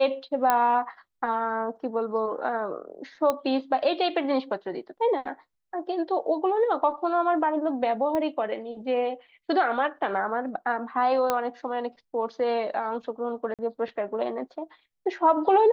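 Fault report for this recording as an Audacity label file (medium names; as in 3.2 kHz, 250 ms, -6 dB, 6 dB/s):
0.500000	0.500000	pop -8 dBFS
3.300000	3.300000	pop -12 dBFS
8.150000	8.150000	pop -17 dBFS
11.300000	11.300000	pop -10 dBFS
13.540000	13.590000	dropout 47 ms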